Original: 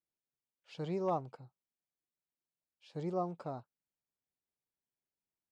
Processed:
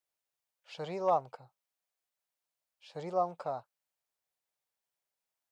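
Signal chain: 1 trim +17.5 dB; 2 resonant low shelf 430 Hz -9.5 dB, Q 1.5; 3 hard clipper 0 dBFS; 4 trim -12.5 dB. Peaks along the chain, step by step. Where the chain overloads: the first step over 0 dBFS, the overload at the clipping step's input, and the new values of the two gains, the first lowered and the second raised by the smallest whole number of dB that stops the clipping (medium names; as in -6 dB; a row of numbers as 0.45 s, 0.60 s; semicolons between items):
-6.0 dBFS, -5.5 dBFS, -5.5 dBFS, -18.0 dBFS; nothing clips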